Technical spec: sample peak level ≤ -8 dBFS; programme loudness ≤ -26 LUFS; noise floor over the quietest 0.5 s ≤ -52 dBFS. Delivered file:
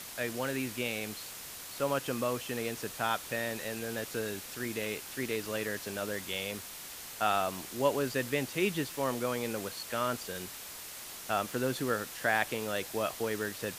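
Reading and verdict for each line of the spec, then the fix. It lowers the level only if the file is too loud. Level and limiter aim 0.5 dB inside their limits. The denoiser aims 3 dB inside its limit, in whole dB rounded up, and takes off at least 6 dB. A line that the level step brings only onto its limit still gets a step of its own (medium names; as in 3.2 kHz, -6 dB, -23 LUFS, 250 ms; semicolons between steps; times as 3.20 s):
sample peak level -13.5 dBFS: pass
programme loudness -34.0 LUFS: pass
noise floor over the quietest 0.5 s -45 dBFS: fail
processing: noise reduction 10 dB, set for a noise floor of -45 dBFS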